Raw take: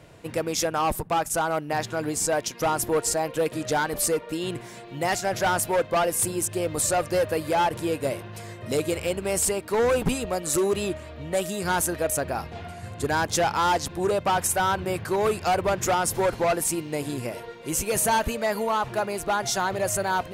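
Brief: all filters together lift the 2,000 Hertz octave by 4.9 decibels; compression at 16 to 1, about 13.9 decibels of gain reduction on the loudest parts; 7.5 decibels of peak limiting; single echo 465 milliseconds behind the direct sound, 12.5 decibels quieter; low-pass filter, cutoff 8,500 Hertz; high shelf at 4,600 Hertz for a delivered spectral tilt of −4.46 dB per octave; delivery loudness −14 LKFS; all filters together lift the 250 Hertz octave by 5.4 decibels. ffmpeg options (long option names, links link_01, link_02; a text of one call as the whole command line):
ffmpeg -i in.wav -af "lowpass=8500,equalizer=frequency=250:width_type=o:gain=8,equalizer=frequency=2000:width_type=o:gain=8,highshelf=frequency=4600:gain=-7,acompressor=threshold=-30dB:ratio=16,alimiter=level_in=2.5dB:limit=-24dB:level=0:latency=1,volume=-2.5dB,aecho=1:1:465:0.237,volume=21.5dB" out.wav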